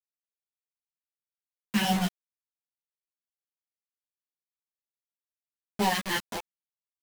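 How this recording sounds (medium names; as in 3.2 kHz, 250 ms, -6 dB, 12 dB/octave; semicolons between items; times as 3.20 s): phasing stages 2, 1.6 Hz, lowest notch 720–1700 Hz; a quantiser's noise floor 6-bit, dither none; a shimmering, thickened sound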